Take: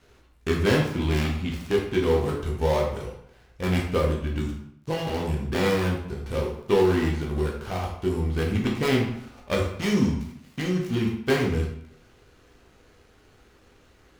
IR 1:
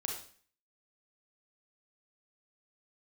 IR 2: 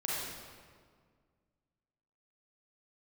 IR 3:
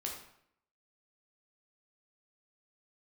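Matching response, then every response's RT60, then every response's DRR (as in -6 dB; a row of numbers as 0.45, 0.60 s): 3; 0.45, 1.8, 0.70 s; 0.5, -6.5, -1.0 dB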